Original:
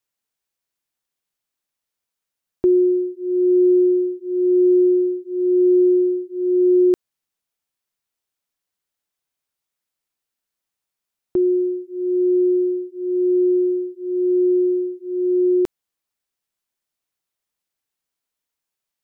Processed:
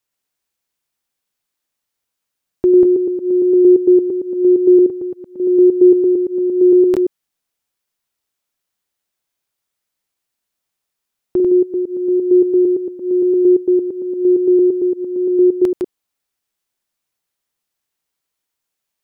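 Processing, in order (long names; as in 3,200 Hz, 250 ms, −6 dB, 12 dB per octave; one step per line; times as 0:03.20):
delay that plays each chunk backwards 114 ms, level −3 dB
0:04.86–0:05.40: parametric band 370 Hz −12 dB 0.86 octaves
level +3 dB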